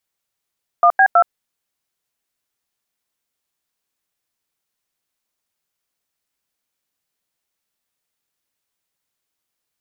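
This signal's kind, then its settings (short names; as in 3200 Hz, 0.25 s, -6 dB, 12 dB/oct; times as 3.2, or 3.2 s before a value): DTMF "1B2", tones 72 ms, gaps 89 ms, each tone -10.5 dBFS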